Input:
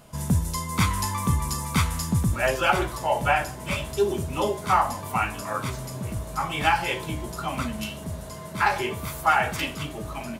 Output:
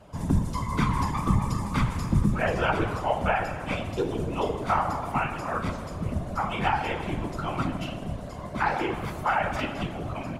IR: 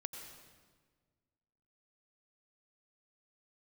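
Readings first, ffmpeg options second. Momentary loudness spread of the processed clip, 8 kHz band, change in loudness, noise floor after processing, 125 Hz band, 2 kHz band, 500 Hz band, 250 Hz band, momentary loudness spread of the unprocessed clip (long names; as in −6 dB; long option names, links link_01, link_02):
7 LU, −13.0 dB, −2.5 dB, −37 dBFS, −0.5 dB, −4.0 dB, −2.0 dB, +1.5 dB, 10 LU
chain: -filter_complex "[0:a]asplit=2[link_01][link_02];[1:a]atrim=start_sample=2205,highshelf=frequency=2700:gain=-7.5[link_03];[link_02][link_03]afir=irnorm=-1:irlink=0,volume=3.5dB[link_04];[link_01][link_04]amix=inputs=2:normalize=0,acrossover=split=170|940|1900[link_05][link_06][link_07][link_08];[link_06]acompressor=threshold=-20dB:ratio=4[link_09];[link_07]acompressor=threshold=-22dB:ratio=4[link_10];[link_08]acompressor=threshold=-27dB:ratio=4[link_11];[link_05][link_09][link_10][link_11]amix=inputs=4:normalize=0,afftfilt=real='hypot(re,im)*cos(2*PI*random(0))':imag='hypot(re,im)*sin(2*PI*random(1))':win_size=512:overlap=0.75,aemphasis=mode=reproduction:type=50fm"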